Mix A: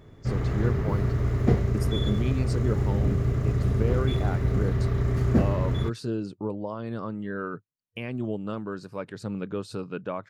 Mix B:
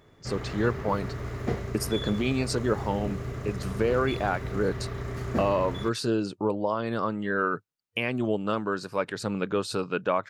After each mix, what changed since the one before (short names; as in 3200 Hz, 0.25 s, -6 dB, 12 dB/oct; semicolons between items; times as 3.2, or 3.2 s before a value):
speech +10.0 dB; master: add low shelf 350 Hz -11.5 dB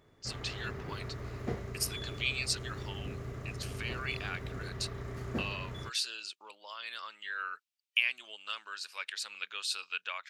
speech: add resonant high-pass 2700 Hz, resonance Q 1.6; background -7.0 dB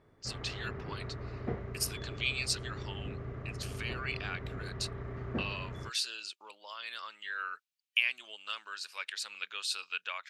background: add LPF 2200 Hz 12 dB/oct